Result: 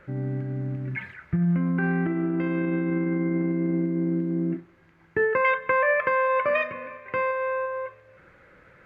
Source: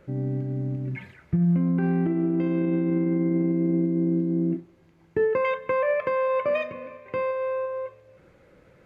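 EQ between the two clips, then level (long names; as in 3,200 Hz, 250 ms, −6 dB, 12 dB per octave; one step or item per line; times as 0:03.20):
low-shelf EQ 200 Hz +4.5 dB
parametric band 1,600 Hz +15 dB 1.6 octaves
−4.5 dB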